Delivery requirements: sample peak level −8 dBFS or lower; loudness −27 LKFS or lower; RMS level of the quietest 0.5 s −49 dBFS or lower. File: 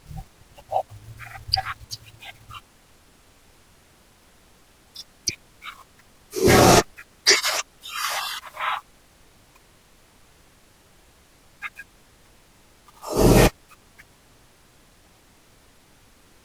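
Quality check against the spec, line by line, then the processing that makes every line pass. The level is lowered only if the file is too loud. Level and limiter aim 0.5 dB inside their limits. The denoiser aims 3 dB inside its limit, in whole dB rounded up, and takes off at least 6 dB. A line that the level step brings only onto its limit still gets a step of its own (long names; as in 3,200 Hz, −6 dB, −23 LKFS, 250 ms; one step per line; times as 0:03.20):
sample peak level −3.5 dBFS: out of spec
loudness −21.0 LKFS: out of spec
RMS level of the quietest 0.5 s −55 dBFS: in spec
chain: level −6.5 dB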